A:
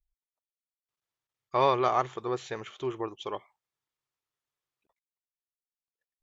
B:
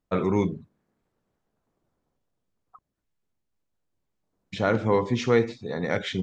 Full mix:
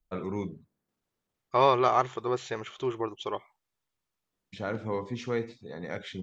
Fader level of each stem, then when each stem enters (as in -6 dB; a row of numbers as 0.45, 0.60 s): +2.0, -10.0 dB; 0.00, 0.00 s